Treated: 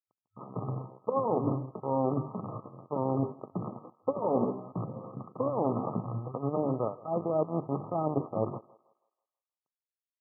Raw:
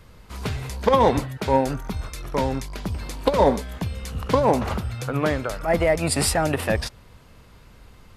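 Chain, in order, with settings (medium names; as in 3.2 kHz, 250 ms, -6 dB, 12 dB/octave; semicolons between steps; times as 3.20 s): rattle on loud lows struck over -23 dBFS, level -9 dBFS; band-stop 1 kHz, Q 12; Chebyshev shaper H 5 -39 dB, 6 -21 dB, 7 -40 dB, 8 -17 dB, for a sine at -1.5 dBFS; hum notches 50/100/150/200/250/300/350/400 Hz; dynamic bell 350 Hz, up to +3 dB, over -32 dBFS, Q 1.6; reverse; compression 10:1, threshold -26 dBFS, peak gain reduction 15.5 dB; reverse; tempo 0.8×; crossover distortion -39 dBFS; FFT band-pass 100–1300 Hz; on a send: thinning echo 162 ms, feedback 42%, high-pass 480 Hz, level -19 dB; on the sum: trim +4 dB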